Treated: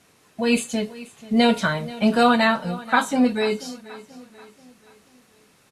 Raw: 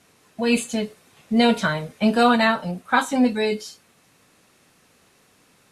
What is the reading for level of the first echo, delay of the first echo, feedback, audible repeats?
−18.5 dB, 484 ms, 46%, 3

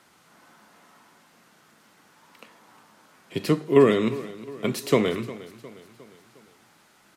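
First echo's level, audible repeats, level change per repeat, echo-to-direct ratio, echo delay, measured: −17.5 dB, 3, −6.0 dB, −16.0 dB, 357 ms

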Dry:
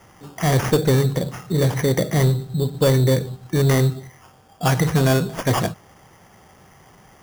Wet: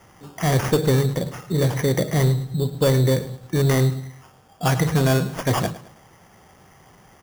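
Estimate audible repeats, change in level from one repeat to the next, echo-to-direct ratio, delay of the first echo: 3, −8.5 dB, −15.5 dB, 107 ms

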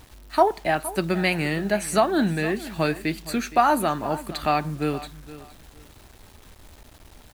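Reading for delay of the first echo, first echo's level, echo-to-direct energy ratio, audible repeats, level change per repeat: 466 ms, −16.5 dB, −16.0 dB, 2, −12.5 dB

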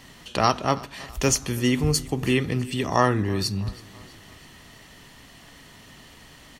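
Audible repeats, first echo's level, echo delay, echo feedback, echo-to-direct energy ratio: 3, −21.5 dB, 326 ms, 50%, −20.5 dB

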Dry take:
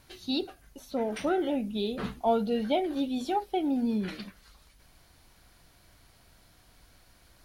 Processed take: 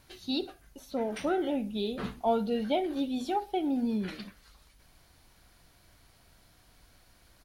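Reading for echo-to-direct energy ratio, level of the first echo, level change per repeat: −19.5 dB, −20.5 dB, −6.5 dB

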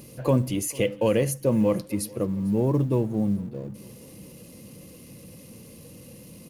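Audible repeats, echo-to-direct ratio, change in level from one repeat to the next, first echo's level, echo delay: 3, −21.5 dB, −5.5 dB, −23.0 dB, 449 ms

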